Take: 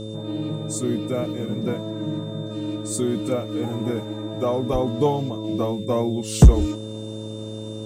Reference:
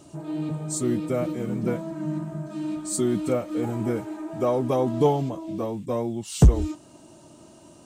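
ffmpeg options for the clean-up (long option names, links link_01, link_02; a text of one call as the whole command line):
ffmpeg -i in.wav -filter_complex "[0:a]bandreject=frequency=108.3:width_type=h:width=4,bandreject=frequency=216.6:width_type=h:width=4,bandreject=frequency=324.9:width_type=h:width=4,bandreject=frequency=433.2:width_type=h:width=4,bandreject=frequency=541.5:width_type=h:width=4,bandreject=frequency=3600:width=30,asplit=3[link_01][link_02][link_03];[link_01]afade=type=out:start_time=4.72:duration=0.02[link_04];[link_02]highpass=frequency=140:width=0.5412,highpass=frequency=140:width=1.3066,afade=type=in:start_time=4.72:duration=0.02,afade=type=out:start_time=4.84:duration=0.02[link_05];[link_03]afade=type=in:start_time=4.84:duration=0.02[link_06];[link_04][link_05][link_06]amix=inputs=3:normalize=0,asetnsamples=nb_out_samples=441:pad=0,asendcmd='5.44 volume volume -4.5dB',volume=0dB" out.wav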